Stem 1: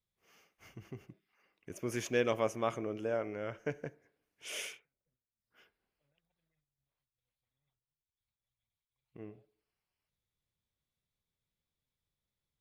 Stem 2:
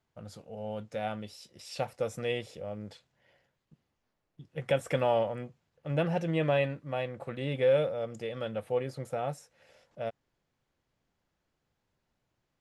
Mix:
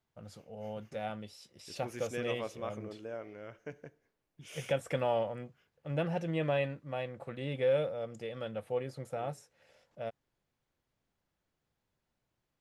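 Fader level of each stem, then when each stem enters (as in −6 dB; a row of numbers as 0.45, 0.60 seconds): −7.5, −4.0 decibels; 0.00, 0.00 seconds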